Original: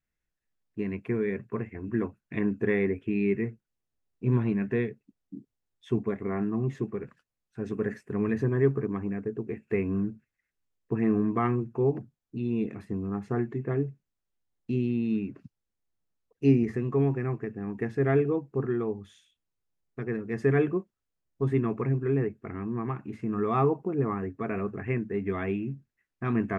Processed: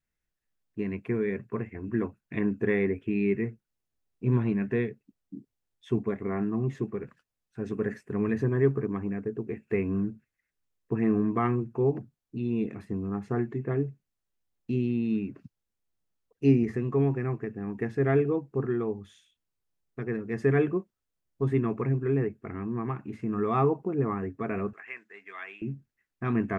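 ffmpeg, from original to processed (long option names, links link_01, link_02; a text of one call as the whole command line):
ffmpeg -i in.wav -filter_complex "[0:a]asettb=1/sr,asplit=3[link_01][link_02][link_03];[link_01]atrim=end=24.734[link_04];[link_02]atrim=start=24.73:end=25.62,asetpts=PTS-STARTPTS,afade=type=in:duration=0.004:curve=qsin,afade=type=out:start_time=0.886:duration=0.004:curve=qsin,highpass=1400[link_05];[link_03]atrim=start=25.616[link_06];[link_04][link_05]acrossfade=duration=0.004:curve1=hsin:curve2=qsin[link_07];[link_07][link_06]acrossfade=duration=0.004:curve1=qsin:curve2=hsin" out.wav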